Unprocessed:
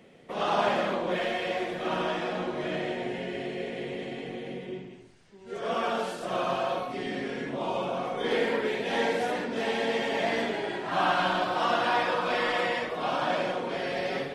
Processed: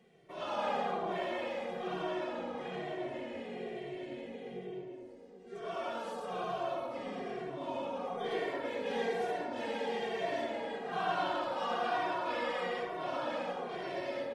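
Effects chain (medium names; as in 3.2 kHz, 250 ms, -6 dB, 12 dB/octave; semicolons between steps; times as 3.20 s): feedback echo behind a band-pass 109 ms, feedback 82%, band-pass 540 Hz, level -3 dB; endless flanger 2.1 ms -1.1 Hz; trim -7.5 dB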